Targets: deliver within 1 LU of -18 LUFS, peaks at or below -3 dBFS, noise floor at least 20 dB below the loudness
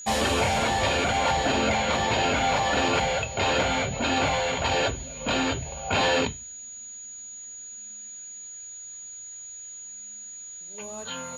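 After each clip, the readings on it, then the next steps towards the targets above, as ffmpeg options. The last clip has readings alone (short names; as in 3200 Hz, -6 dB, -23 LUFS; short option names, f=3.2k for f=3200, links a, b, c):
steady tone 6800 Hz; tone level -38 dBFS; loudness -24.5 LUFS; peak -12.5 dBFS; loudness target -18.0 LUFS
-> -af "bandreject=f=6.8k:w=30"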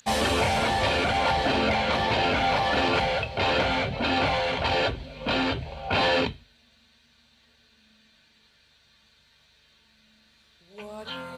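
steady tone none; loudness -24.5 LUFS; peak -12.5 dBFS; loudness target -18.0 LUFS
-> -af "volume=6.5dB"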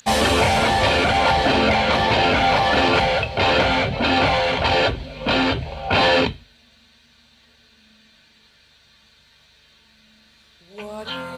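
loudness -18.0 LUFS; peak -6.0 dBFS; noise floor -56 dBFS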